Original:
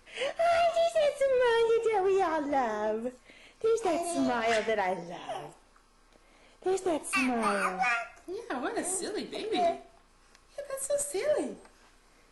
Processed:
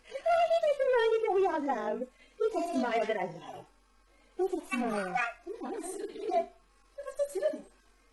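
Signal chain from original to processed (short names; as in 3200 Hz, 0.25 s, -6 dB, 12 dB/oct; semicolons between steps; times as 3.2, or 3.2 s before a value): median-filter separation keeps harmonic; granular stretch 0.66×, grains 40 ms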